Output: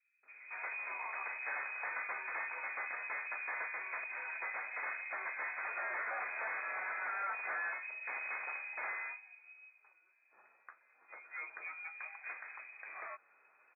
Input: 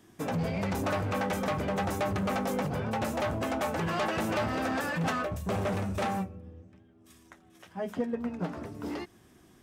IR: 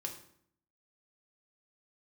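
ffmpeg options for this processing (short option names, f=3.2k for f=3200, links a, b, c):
-filter_complex "[0:a]equalizer=f=350:t=o:w=1.8:g=-13.5,asoftclip=type=hard:threshold=-35dB,lowpass=f=3.1k:t=q:w=0.5098,lowpass=f=3.1k:t=q:w=0.6013,lowpass=f=3.1k:t=q:w=0.9,lowpass=f=3.1k:t=q:w=2.563,afreqshift=-3700,asetrate=30870,aresample=44100,acrossover=split=380 2300:gain=0.1 1 0.0631[a][b][c];[a][b][c]amix=inputs=3:normalize=0,acrossover=split=2900[d][e];[d]adelay=230[f];[f][e]amix=inputs=2:normalize=0,volume=2.5dB"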